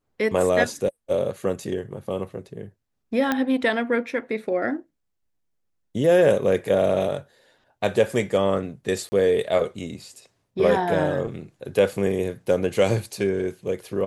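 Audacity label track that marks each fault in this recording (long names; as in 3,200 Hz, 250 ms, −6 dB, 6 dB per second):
3.320000	3.320000	click −9 dBFS
9.090000	9.120000	drop-out 30 ms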